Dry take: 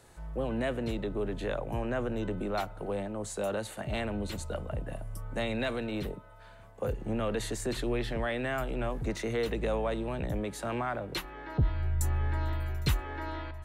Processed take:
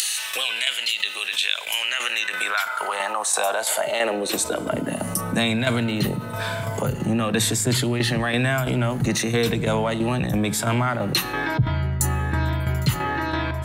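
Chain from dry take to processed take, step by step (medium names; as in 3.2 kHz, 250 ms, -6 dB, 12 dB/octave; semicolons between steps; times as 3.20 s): drifting ripple filter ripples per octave 1.7, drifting -1 Hz, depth 7 dB; tremolo saw down 3 Hz, depth 70%; high-pass sweep 2.9 kHz -> 130 Hz, 1.78–5.68 s; upward compressor, threshold -35 dBFS; treble shelf 3.2 kHz +9.5 dB, from 11.58 s +3.5 dB; reverberation RT60 1.2 s, pre-delay 3 ms, DRR 19.5 dB; dynamic bell 470 Hz, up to -6 dB, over -48 dBFS, Q 1.7; level flattener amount 50%; trim +6.5 dB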